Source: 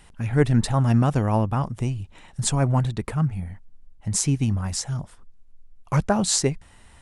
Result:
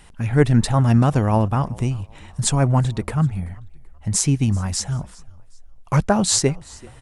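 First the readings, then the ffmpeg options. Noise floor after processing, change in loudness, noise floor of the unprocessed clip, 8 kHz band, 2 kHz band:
-45 dBFS, +3.5 dB, -51 dBFS, +3.5 dB, +3.5 dB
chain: -filter_complex "[0:a]asplit=3[a][b][c];[b]adelay=384,afreqshift=-41,volume=-23.5dB[d];[c]adelay=768,afreqshift=-82,volume=-32.4dB[e];[a][d][e]amix=inputs=3:normalize=0,volume=3.5dB"

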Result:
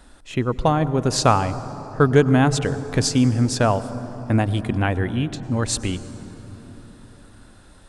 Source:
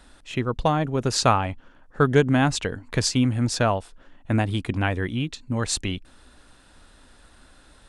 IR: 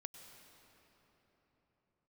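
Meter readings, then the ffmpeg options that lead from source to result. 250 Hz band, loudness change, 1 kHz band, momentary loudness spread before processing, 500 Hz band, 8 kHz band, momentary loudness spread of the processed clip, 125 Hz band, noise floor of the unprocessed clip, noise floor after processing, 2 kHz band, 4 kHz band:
+4.0 dB, +3.0 dB, +2.5 dB, 10 LU, +3.5 dB, +2.0 dB, 15 LU, +4.0 dB, -54 dBFS, -48 dBFS, +0.5 dB, +0.5 dB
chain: -filter_complex "[0:a]asplit=2[a][b];[b]equalizer=f=2.9k:w=0.97:g=-13[c];[1:a]atrim=start_sample=2205[d];[c][d]afir=irnorm=-1:irlink=0,volume=6dB[e];[a][e]amix=inputs=2:normalize=0,volume=-2.5dB"

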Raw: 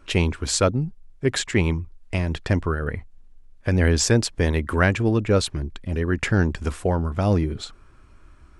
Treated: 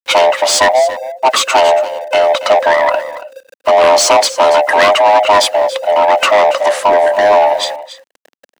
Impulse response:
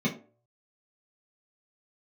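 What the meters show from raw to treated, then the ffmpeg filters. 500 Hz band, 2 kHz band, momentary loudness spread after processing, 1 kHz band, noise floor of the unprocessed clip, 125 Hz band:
+16.5 dB, +12.0 dB, 7 LU, +23.0 dB, -50 dBFS, under -20 dB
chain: -filter_complex "[0:a]afftfilt=real='real(if(lt(b,1008),b+24*(1-2*mod(floor(b/24),2)),b),0)':imag='imag(if(lt(b,1008),b+24*(1-2*mod(floor(b/24),2)),b),0)':win_size=2048:overlap=0.75,agate=range=-11dB:threshold=-41dB:ratio=16:detection=peak,acrossover=split=390[a][b];[b]aeval=exprs='0.562*sin(PI/2*2.51*val(0)/0.562)':c=same[c];[a][c]amix=inputs=2:normalize=0,asplit=2[d][e];[e]highpass=f=720:p=1,volume=15dB,asoftclip=type=tanh:threshold=-2dB[f];[d][f]amix=inputs=2:normalize=0,lowpass=f=5k:p=1,volume=-6dB,aeval=exprs='val(0)*gte(abs(val(0)),0.0211)':c=same,lowshelf=f=200:t=q:w=1.5:g=-8.5,asplit=2[g][h];[h]aecho=0:1:281:0.188[i];[g][i]amix=inputs=2:normalize=0,volume=-1dB"

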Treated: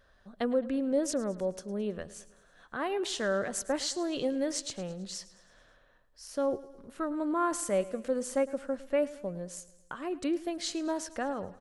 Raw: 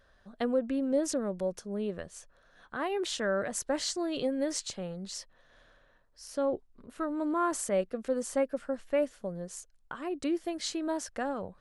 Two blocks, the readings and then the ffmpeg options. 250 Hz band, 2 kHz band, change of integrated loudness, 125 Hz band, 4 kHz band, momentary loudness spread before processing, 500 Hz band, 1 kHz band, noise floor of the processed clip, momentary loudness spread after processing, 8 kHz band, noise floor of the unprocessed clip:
0.0 dB, 0.0 dB, 0.0 dB, 0.0 dB, 0.0 dB, 11 LU, 0.0 dB, 0.0 dB, -64 dBFS, 12 LU, 0.0 dB, -65 dBFS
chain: -af "aecho=1:1:108|216|324|432|540:0.126|0.068|0.0367|0.0198|0.0107"

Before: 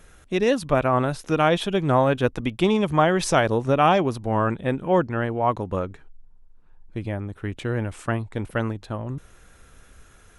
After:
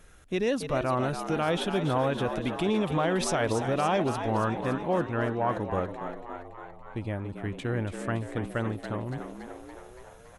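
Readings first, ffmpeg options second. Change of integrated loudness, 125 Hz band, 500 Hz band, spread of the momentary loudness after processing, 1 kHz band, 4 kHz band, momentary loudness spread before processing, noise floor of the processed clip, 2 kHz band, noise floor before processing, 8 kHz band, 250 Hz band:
-6.0 dB, -5.5 dB, -6.0 dB, 15 LU, -6.5 dB, -5.0 dB, 12 LU, -50 dBFS, -6.0 dB, -52 dBFS, -3.5 dB, -5.0 dB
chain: -filter_complex "[0:a]alimiter=limit=-13.5dB:level=0:latency=1:release=28,acontrast=25,asplit=9[a][b][c][d][e][f][g][h][i];[b]adelay=283,afreqshift=83,volume=-9dB[j];[c]adelay=566,afreqshift=166,volume=-13dB[k];[d]adelay=849,afreqshift=249,volume=-17dB[l];[e]adelay=1132,afreqshift=332,volume=-21dB[m];[f]adelay=1415,afreqshift=415,volume=-25.1dB[n];[g]adelay=1698,afreqshift=498,volume=-29.1dB[o];[h]adelay=1981,afreqshift=581,volume=-33.1dB[p];[i]adelay=2264,afreqshift=664,volume=-37.1dB[q];[a][j][k][l][m][n][o][p][q]amix=inputs=9:normalize=0,volume=-9dB"

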